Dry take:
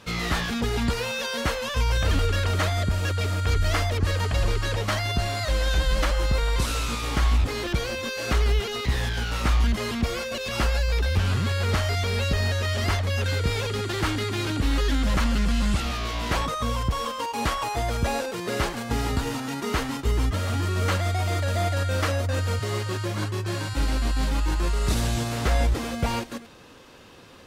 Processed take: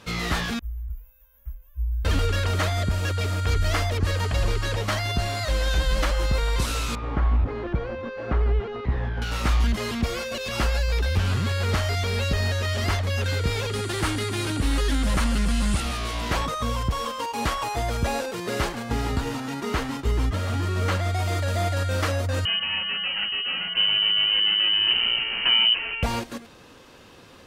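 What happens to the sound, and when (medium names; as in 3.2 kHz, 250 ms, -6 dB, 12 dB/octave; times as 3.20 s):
0.59–2.05 s: inverse Chebyshev band-stop 120–9700 Hz
6.95–9.22 s: low-pass 1.3 kHz
13.73–16.21 s: peaking EQ 9.3 kHz +9.5 dB 0.4 oct
18.72–21.14 s: treble shelf 4.9 kHz -5 dB
22.45–26.03 s: frequency inversion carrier 3 kHz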